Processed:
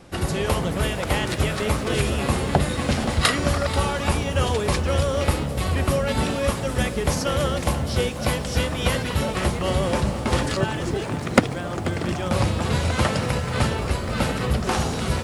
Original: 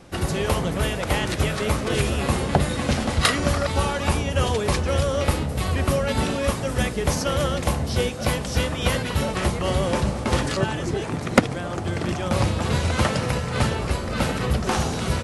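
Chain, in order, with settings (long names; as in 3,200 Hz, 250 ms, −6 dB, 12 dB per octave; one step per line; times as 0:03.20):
notch filter 6,100 Hz, Q 28
feedback echo at a low word length 486 ms, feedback 35%, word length 7 bits, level −14.5 dB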